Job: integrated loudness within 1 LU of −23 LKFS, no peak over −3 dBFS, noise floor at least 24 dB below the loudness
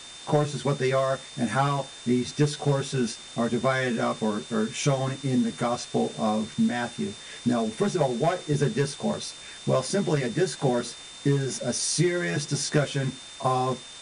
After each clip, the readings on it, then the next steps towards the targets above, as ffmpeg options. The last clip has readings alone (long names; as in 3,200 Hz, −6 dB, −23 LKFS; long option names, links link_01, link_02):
interfering tone 3,600 Hz; level of the tone −44 dBFS; background noise floor −43 dBFS; target noise floor −51 dBFS; integrated loudness −26.5 LKFS; sample peak −10.0 dBFS; target loudness −23.0 LKFS
→ -af "bandreject=frequency=3600:width=30"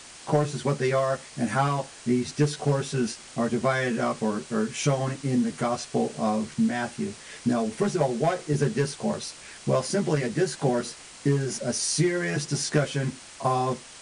interfering tone none found; background noise floor −46 dBFS; target noise floor −51 dBFS
→ -af "afftdn=noise_reduction=6:noise_floor=-46"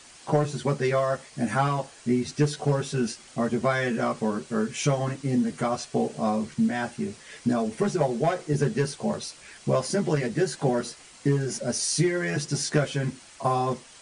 background noise floor −50 dBFS; target noise floor −51 dBFS
→ -af "afftdn=noise_reduction=6:noise_floor=-50"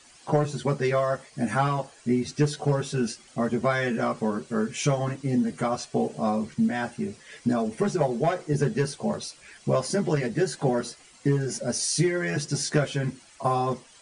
background noise floor −54 dBFS; integrated loudness −27.0 LKFS; sample peak −10.0 dBFS; target loudness −23.0 LKFS
→ -af "volume=4dB"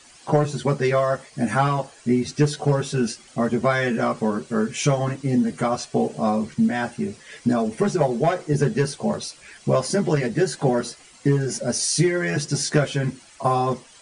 integrated loudness −23.0 LKFS; sample peak −6.0 dBFS; background noise floor −50 dBFS